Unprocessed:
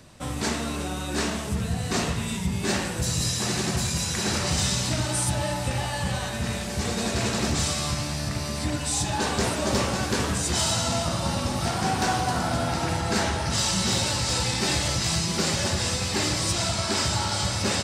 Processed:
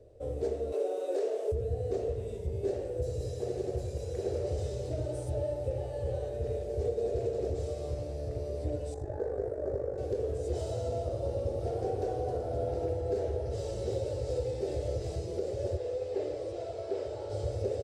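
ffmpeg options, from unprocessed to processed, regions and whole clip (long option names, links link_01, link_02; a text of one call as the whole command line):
ffmpeg -i in.wav -filter_complex "[0:a]asettb=1/sr,asplit=3[link_01][link_02][link_03];[link_01]atrim=end=0.724[link_04];[link_02]atrim=start=0.72:end=1.52,asetpts=PTS-STARTPTS,afade=type=in:duration=0.004:curve=qsin,afade=type=out:start_time=0.796:duration=0.004:curve=qsin,highpass=frequency=410:width=0.5412,highpass=frequency=410:width=1.3066,acontrast=83[link_05];[link_03]atrim=start=1.516[link_06];[link_04][link_05]acrossfade=duration=0.004:curve1=hsin:curve2=qsin[link_07];[link_07][link_06]acrossfade=duration=0.004:curve1=qsin:curve2=hsin,asettb=1/sr,asplit=3[link_08][link_09][link_10];[link_08]atrim=end=8.944[link_11];[link_09]atrim=start=8.94:end=9.98,asetpts=PTS-STARTPTS,afade=type=in:duration=0.004:curve=qsin,afade=type=out:start_time=1.036:duration=0.004:curve=qsin,highshelf=frequency=2200:width_type=q:width=3:gain=-9,tremolo=f=50:d=0.71[link_12];[link_10]atrim=start=9.976[link_13];[link_11][link_12]acrossfade=duration=0.004:curve1=hsin:curve2=qsin[link_14];[link_14][link_13]acrossfade=duration=0.004:curve1=qsin:curve2=hsin,asettb=1/sr,asplit=3[link_15][link_16][link_17];[link_15]atrim=end=15.774[link_18];[link_16]atrim=start=15.77:end=17.3,asetpts=PTS-STARTPTS,afade=type=in:duration=0.004:curve=qsin,afade=type=out:start_time=1.526:duration=0.004:curve=qsin,acrossover=split=4000[link_19][link_20];[link_20]acompressor=threshold=-34dB:ratio=4:attack=1:release=60[link_21];[link_19][link_21]amix=inputs=2:normalize=0,lowpass=11000,bass=frequency=250:gain=-14,treble=frequency=4000:gain=-2[link_22];[link_17]atrim=start=17.296[link_23];[link_18][link_22]acrossfade=duration=0.004:curve1=hsin:curve2=qsin[link_24];[link_24][link_23]acrossfade=duration=0.004:curve1=qsin:curve2=hsin,firequalizer=gain_entry='entry(100,0);entry(180,-22);entry(450,13);entry(960,-23)':delay=0.05:min_phase=1,alimiter=limit=-18.5dB:level=0:latency=1:release=407,volume=-3.5dB" out.wav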